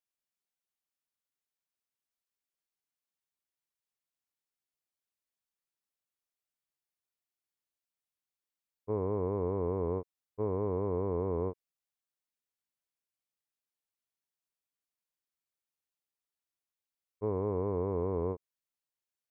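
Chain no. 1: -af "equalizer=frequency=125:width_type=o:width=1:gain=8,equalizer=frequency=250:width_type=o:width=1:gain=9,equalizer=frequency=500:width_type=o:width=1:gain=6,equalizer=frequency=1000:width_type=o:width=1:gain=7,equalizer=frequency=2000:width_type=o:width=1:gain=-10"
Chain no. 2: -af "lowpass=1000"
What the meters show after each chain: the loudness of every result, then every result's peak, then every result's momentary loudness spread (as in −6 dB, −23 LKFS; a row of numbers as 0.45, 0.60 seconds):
−25.5, −34.0 LKFS; −12.0, −22.0 dBFS; 6, 6 LU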